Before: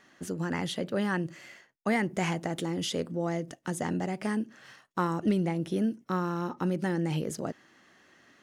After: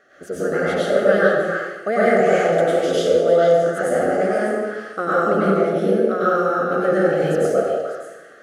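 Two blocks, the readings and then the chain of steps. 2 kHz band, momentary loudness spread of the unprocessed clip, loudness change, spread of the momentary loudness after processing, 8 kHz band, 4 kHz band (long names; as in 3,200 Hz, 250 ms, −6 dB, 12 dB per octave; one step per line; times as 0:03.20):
+13.5 dB, 10 LU, +13.0 dB, 10 LU, +4.5 dB, +5.5 dB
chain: Butterworth band-reject 960 Hz, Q 1.6
flat-topped bell 790 Hz +15.5 dB 2.3 octaves
mains-hum notches 60/120/180 Hz
on a send: echo through a band-pass that steps 150 ms, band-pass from 500 Hz, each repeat 1.4 octaves, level −1.5 dB
on the sum: dense smooth reverb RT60 1.1 s, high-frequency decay 0.85×, pre-delay 85 ms, DRR −8.5 dB
level −4.5 dB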